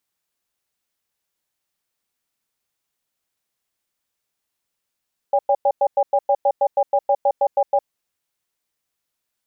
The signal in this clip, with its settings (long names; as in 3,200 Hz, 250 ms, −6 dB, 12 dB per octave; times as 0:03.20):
tone pair in a cadence 568 Hz, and 805 Hz, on 0.06 s, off 0.10 s, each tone −16 dBFS 2.51 s